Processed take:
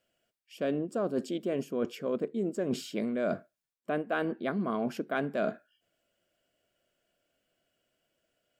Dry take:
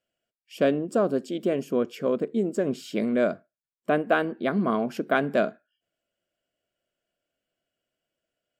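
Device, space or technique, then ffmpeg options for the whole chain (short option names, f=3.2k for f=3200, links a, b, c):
compression on the reversed sound: -af "areverse,acompressor=threshold=-35dB:ratio=6,areverse,volume=6dB"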